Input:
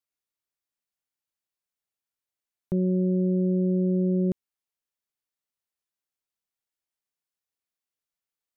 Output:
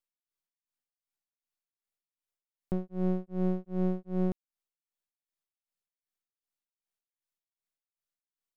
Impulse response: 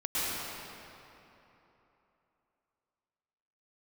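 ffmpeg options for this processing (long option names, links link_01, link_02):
-af "aeval=exprs='if(lt(val(0),0),0.251*val(0),val(0))':channel_layout=same,tremolo=f=2.6:d=1"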